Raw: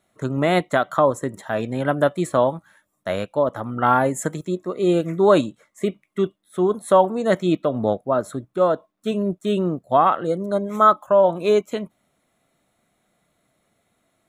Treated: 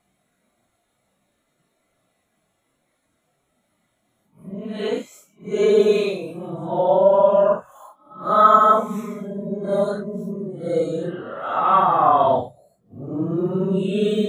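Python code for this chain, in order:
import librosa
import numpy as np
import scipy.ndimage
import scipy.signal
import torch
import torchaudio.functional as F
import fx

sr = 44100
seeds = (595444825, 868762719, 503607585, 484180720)

y = x[::-1].copy()
y = fx.paulstretch(y, sr, seeds[0], factor=4.1, window_s=0.05, from_s=1.34)
y = y * 10.0 ** (-1.0 / 20.0)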